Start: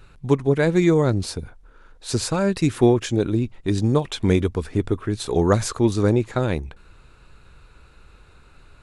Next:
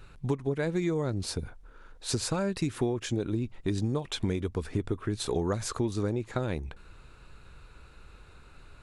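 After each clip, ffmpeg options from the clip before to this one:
-af "acompressor=threshold=-24dB:ratio=6,volume=-2dB"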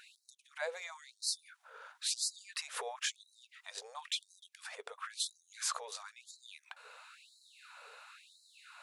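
-af "alimiter=level_in=4dB:limit=-24dB:level=0:latency=1:release=189,volume=-4dB,afftfilt=real='re*gte(b*sr/1024,410*pow(3900/410,0.5+0.5*sin(2*PI*0.98*pts/sr)))':imag='im*gte(b*sr/1024,410*pow(3900/410,0.5+0.5*sin(2*PI*0.98*pts/sr)))':win_size=1024:overlap=0.75,volume=5dB"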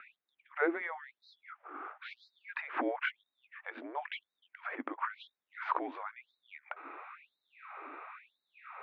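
-af "highpass=f=330:t=q:w=0.5412,highpass=f=330:t=q:w=1.307,lowpass=f=2.4k:t=q:w=0.5176,lowpass=f=2.4k:t=q:w=0.7071,lowpass=f=2.4k:t=q:w=1.932,afreqshift=-160,volume=8.5dB"

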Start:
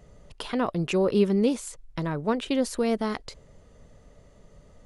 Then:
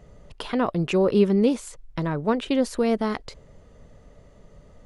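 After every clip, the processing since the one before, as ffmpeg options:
-af "highshelf=f=4.7k:g=-6.5,volume=3dB"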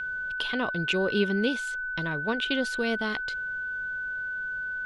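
-af "aeval=exprs='val(0)+0.0501*sin(2*PI*1500*n/s)':c=same,equalizer=f=3.3k:w=1.1:g=14,volume=-7.5dB"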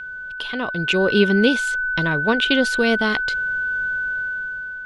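-af "dynaudnorm=f=350:g=5:m=11.5dB"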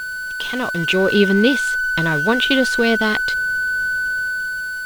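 -af "aeval=exprs='val(0)+0.5*0.0355*sgn(val(0))':c=same,volume=1dB"

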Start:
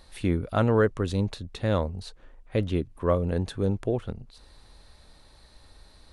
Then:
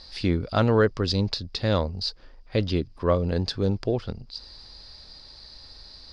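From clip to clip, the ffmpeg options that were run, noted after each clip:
-af "lowpass=f=4.9k:t=q:w=14,volume=1.5dB"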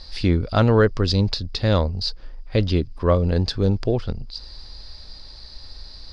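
-af "lowshelf=f=60:g=12,volume=3dB"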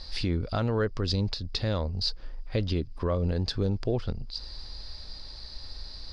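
-af "alimiter=limit=-15.5dB:level=0:latency=1:release=322,volume=-1.5dB"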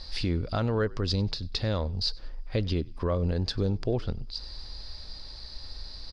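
-filter_complex "[0:a]asplit=3[a][b][c];[b]adelay=96,afreqshift=-52,volume=-24dB[d];[c]adelay=192,afreqshift=-104,volume=-33.1dB[e];[a][d][e]amix=inputs=3:normalize=0"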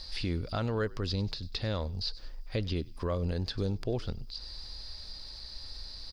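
-filter_complex "[0:a]acrossover=split=3600[a][b];[b]acompressor=threshold=-49dB:ratio=4:attack=1:release=60[c];[a][c]amix=inputs=2:normalize=0,aemphasis=mode=production:type=75kf,volume=-4.5dB"

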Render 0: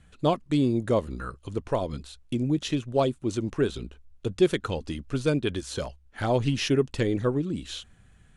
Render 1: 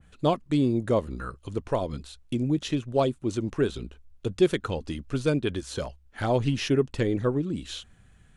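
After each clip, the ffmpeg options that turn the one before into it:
-af "adynamicequalizer=threshold=0.00794:dfrequency=2300:dqfactor=0.7:tfrequency=2300:tqfactor=0.7:attack=5:release=100:ratio=0.375:range=2.5:mode=cutabove:tftype=highshelf"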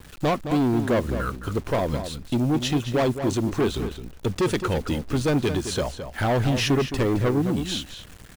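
-filter_complex "[0:a]asoftclip=type=tanh:threshold=-26.5dB,acrusher=bits=8:mix=0:aa=0.000001,asplit=2[a][b];[b]adelay=215.7,volume=-9dB,highshelf=f=4k:g=-4.85[c];[a][c]amix=inputs=2:normalize=0,volume=8.5dB"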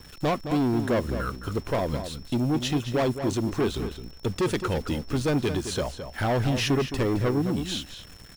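-af "aeval=exprs='val(0)+0.00355*sin(2*PI*5400*n/s)':c=same,volume=-2.5dB"

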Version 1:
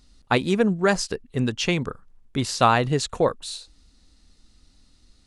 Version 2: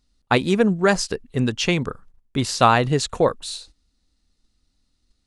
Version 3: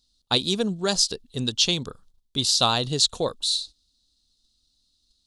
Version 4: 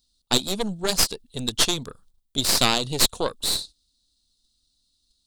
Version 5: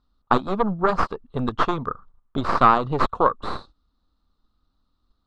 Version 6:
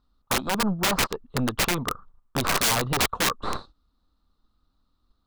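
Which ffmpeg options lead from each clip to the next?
-af "agate=range=-14dB:threshold=-47dB:ratio=16:detection=peak,volume=2.5dB"
-af "highshelf=f=2.8k:t=q:w=3:g=10,volume=-7.5dB"
-af "aexciter=amount=1.9:drive=4:freq=8.1k,aeval=exprs='0.891*(cos(1*acos(clip(val(0)/0.891,-1,1)))-cos(1*PI/2))+0.251*(cos(6*acos(clip(val(0)/0.891,-1,1)))-cos(6*PI/2))':c=same,volume=-1.5dB"
-filter_complex "[0:a]asplit=2[a][b];[b]acompressor=threshold=-30dB:ratio=6,volume=2.5dB[c];[a][c]amix=inputs=2:normalize=0,lowpass=f=1.2k:t=q:w=5"
-af "aeval=exprs='(mod(6.31*val(0)+1,2)-1)/6.31':c=same"

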